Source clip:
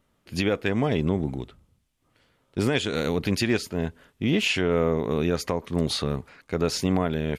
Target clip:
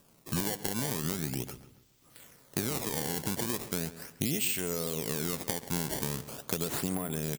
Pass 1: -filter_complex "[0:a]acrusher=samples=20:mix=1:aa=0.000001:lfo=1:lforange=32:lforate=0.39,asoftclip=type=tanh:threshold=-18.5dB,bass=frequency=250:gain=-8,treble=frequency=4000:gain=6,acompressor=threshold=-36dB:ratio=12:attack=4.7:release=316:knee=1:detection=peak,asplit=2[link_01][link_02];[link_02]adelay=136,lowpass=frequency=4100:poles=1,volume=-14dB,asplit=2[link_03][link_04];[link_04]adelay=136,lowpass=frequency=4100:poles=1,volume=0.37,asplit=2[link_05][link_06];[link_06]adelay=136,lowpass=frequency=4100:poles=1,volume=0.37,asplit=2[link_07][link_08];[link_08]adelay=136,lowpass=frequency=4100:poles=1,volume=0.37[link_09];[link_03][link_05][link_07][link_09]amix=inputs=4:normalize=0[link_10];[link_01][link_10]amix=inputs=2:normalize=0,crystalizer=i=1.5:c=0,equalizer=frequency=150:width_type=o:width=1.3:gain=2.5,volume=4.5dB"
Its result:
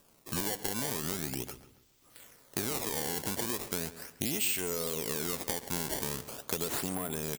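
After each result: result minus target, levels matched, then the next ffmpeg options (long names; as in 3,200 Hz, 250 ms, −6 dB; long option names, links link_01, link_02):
soft clipping: distortion +13 dB; 125 Hz band −5.0 dB
-filter_complex "[0:a]acrusher=samples=20:mix=1:aa=0.000001:lfo=1:lforange=32:lforate=0.39,asoftclip=type=tanh:threshold=-10dB,bass=frequency=250:gain=-8,treble=frequency=4000:gain=6,acompressor=threshold=-36dB:ratio=12:attack=4.7:release=316:knee=1:detection=peak,asplit=2[link_01][link_02];[link_02]adelay=136,lowpass=frequency=4100:poles=1,volume=-14dB,asplit=2[link_03][link_04];[link_04]adelay=136,lowpass=frequency=4100:poles=1,volume=0.37,asplit=2[link_05][link_06];[link_06]adelay=136,lowpass=frequency=4100:poles=1,volume=0.37,asplit=2[link_07][link_08];[link_08]adelay=136,lowpass=frequency=4100:poles=1,volume=0.37[link_09];[link_03][link_05][link_07][link_09]amix=inputs=4:normalize=0[link_10];[link_01][link_10]amix=inputs=2:normalize=0,crystalizer=i=1.5:c=0,equalizer=frequency=150:width_type=o:width=1.3:gain=2.5,volume=4.5dB"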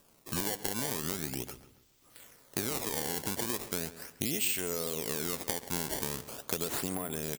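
125 Hz band −5.0 dB
-filter_complex "[0:a]acrusher=samples=20:mix=1:aa=0.000001:lfo=1:lforange=32:lforate=0.39,asoftclip=type=tanh:threshold=-10dB,bass=frequency=250:gain=-8,treble=frequency=4000:gain=6,acompressor=threshold=-36dB:ratio=12:attack=4.7:release=316:knee=1:detection=peak,asplit=2[link_01][link_02];[link_02]adelay=136,lowpass=frequency=4100:poles=1,volume=-14dB,asplit=2[link_03][link_04];[link_04]adelay=136,lowpass=frequency=4100:poles=1,volume=0.37,asplit=2[link_05][link_06];[link_06]adelay=136,lowpass=frequency=4100:poles=1,volume=0.37,asplit=2[link_07][link_08];[link_08]adelay=136,lowpass=frequency=4100:poles=1,volume=0.37[link_09];[link_03][link_05][link_07][link_09]amix=inputs=4:normalize=0[link_10];[link_01][link_10]amix=inputs=2:normalize=0,crystalizer=i=1.5:c=0,equalizer=frequency=150:width_type=o:width=1.3:gain=9.5,volume=4.5dB"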